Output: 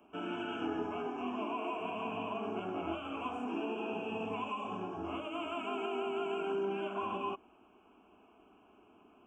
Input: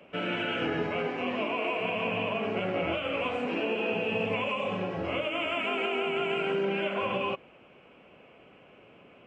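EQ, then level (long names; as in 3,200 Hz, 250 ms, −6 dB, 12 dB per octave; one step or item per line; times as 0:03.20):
Butterworth band-reject 4,200 Hz, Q 1.5
phaser with its sweep stopped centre 530 Hz, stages 6
−3.0 dB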